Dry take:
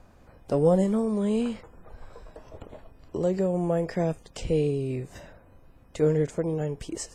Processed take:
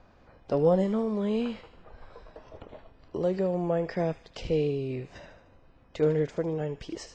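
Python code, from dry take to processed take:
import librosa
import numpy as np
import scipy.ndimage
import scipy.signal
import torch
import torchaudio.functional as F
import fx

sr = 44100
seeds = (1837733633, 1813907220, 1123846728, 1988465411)

y = scipy.signal.sosfilt(scipy.signal.butter(4, 5200.0, 'lowpass', fs=sr, output='sos'), x)
y = fx.low_shelf(y, sr, hz=290.0, db=-5.0)
y = fx.echo_wet_highpass(y, sr, ms=76, feedback_pct=55, hz=2200.0, wet_db=-9.5)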